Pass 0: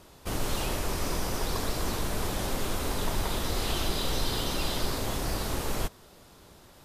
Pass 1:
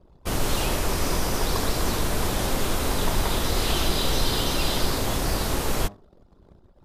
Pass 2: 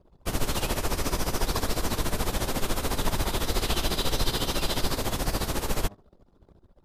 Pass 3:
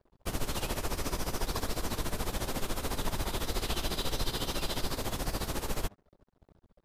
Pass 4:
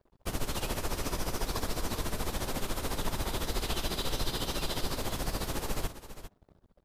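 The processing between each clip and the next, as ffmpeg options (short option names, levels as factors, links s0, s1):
-af "bandreject=f=101.2:t=h:w=4,bandreject=f=202.4:t=h:w=4,bandreject=f=303.6:t=h:w=4,bandreject=f=404.8:t=h:w=4,bandreject=f=506:t=h:w=4,bandreject=f=607.2:t=h:w=4,bandreject=f=708.4:t=h:w=4,bandreject=f=809.6:t=h:w=4,bandreject=f=910.8:t=h:w=4,bandreject=f=1012:t=h:w=4,bandreject=f=1113.2:t=h:w=4,bandreject=f=1214.4:t=h:w=4,anlmdn=0.00631,volume=2"
-af "tremolo=f=14:d=0.75"
-filter_complex "[0:a]asplit=2[s0][s1];[s1]acompressor=threshold=0.0224:ratio=6,volume=1.12[s2];[s0][s2]amix=inputs=2:normalize=0,aeval=exprs='sgn(val(0))*max(abs(val(0))-0.00237,0)':c=same,volume=0.376"
-af "aecho=1:1:401:0.237"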